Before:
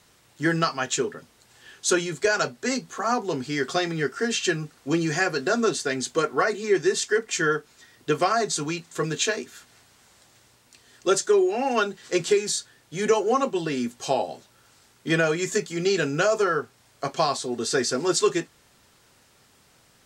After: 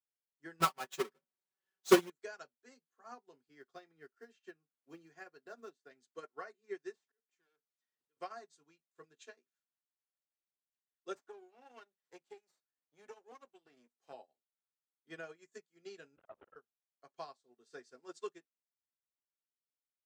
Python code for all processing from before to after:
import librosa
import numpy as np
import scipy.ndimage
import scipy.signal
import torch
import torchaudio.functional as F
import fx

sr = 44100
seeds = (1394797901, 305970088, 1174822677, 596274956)

y = fx.chain(x, sr, fx.halfwave_hold(),
    fx.comb(ms=5.3, depth=0.99), at=(0.6, 2.1))
y = fx.chain(y, sr, fx.high_shelf(hz=3000.0, db=-6.0),
    fx.quant_float(bits=4),
    fx.band_squash(depth_pct=40), at=(3.49, 5.91))
y = fx.chain(y, sr, fx.auto_swell(attack_ms=660.0),
    fx.overload_stage(gain_db=31.5),
    fx.band_squash(depth_pct=70), at=(6.95, 8.17))
y = fx.chain(y, sr, fx.halfwave_gain(db=-12.0),
    fx.low_shelf(hz=110.0, db=-6.0),
    fx.band_squash(depth_pct=70), at=(11.15, 14.13))
y = fx.chain(y, sr, fx.lpc_vocoder(seeds[0], excitation='whisper', order=10),
    fx.transformer_sat(knee_hz=580.0), at=(16.16, 16.56))
y = fx.highpass(y, sr, hz=400.0, slope=6)
y = fx.high_shelf(y, sr, hz=2500.0, db=-6.0)
y = fx.upward_expand(y, sr, threshold_db=-39.0, expansion=2.5)
y = F.gain(torch.from_numpy(y), -5.5).numpy()